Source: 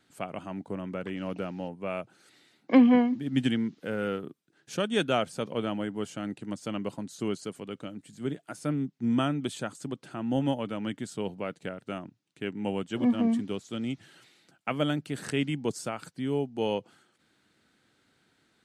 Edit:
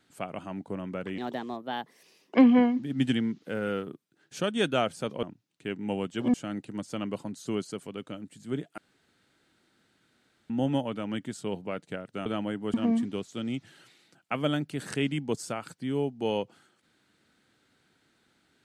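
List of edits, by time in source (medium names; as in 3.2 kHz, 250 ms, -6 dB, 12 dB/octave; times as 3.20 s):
1.18–2.71 s: speed 131%
5.59–6.07 s: swap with 11.99–13.10 s
8.51–10.23 s: room tone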